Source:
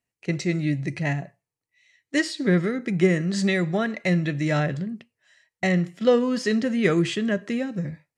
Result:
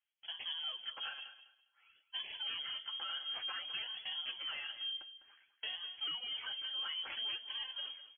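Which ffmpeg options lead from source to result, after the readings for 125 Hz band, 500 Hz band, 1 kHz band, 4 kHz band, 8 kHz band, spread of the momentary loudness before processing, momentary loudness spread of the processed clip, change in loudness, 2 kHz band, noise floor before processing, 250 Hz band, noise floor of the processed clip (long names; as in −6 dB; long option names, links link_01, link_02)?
below −40 dB, −39.5 dB, −16.5 dB, +1.5 dB, below −40 dB, 9 LU, 7 LU, −15.5 dB, −17.5 dB, below −85 dBFS, below −40 dB, −78 dBFS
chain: -filter_complex "[0:a]lowshelf=frequency=190:gain=-6,bandreject=frequency=60:width_type=h:width=6,bandreject=frequency=120:width_type=h:width=6,bandreject=frequency=180:width_type=h:width=6,bandreject=frequency=240:width_type=h:width=6,aecho=1:1:3.9:0.94,acompressor=threshold=-28dB:ratio=6,acrusher=samples=12:mix=1:aa=0.000001:lfo=1:lforange=19.2:lforate=0.56,asoftclip=type=tanh:threshold=-25.5dB,flanger=delay=4.6:depth=7.9:regen=-33:speed=0.82:shape=sinusoidal,asplit=2[link_01][link_02];[link_02]aecho=0:1:203|406|609:0.224|0.0493|0.0108[link_03];[link_01][link_03]amix=inputs=2:normalize=0,lowpass=frequency=2900:width_type=q:width=0.5098,lowpass=frequency=2900:width_type=q:width=0.6013,lowpass=frequency=2900:width_type=q:width=0.9,lowpass=frequency=2900:width_type=q:width=2.563,afreqshift=-3400,volume=-5.5dB"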